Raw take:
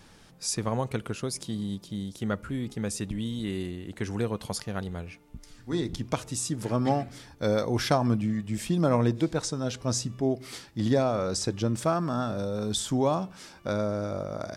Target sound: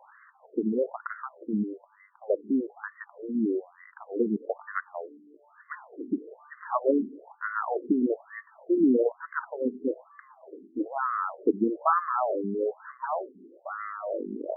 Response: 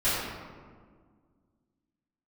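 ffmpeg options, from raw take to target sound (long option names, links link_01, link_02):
-filter_complex "[0:a]asettb=1/sr,asplit=3[link_01][link_02][link_03];[link_01]atrim=end=13.044[link_04];[link_02]atrim=start=13.04:end=14.19,asetpts=PTS-STARTPTS,afade=type=in:duration=0.004:curve=qsin,afade=type=out:start_time=1.146:duration=0.004:curve=qsin,aeval=exprs='(tanh(31.6*val(0)+0.35)-tanh(0.35))/31.6':channel_layout=same[link_05];[link_03]atrim=start=14.186[link_06];[link_04][link_05]acrossfade=duration=0.004:curve1=hsin:curve2=qsin[link_07];[link_07][link_06]acrossfade=duration=0.004:curve1=qsin:curve2=hsin,afftfilt=real='re*between(b*sr/1024,290*pow(1500/290,0.5+0.5*sin(2*PI*1.1*pts/sr))/1.41,290*pow(1500/290,0.5+0.5*sin(2*PI*1.1*pts/sr))*1.41)':imag='im*between(b*sr/1024,290*pow(1500/290,0.5+0.5*sin(2*PI*1.1*pts/sr))/1.41,290*pow(1500/290,0.5+0.5*sin(2*PI*1.1*pts/sr))*1.41)':win_size=1024:overlap=0.75,volume=9dB"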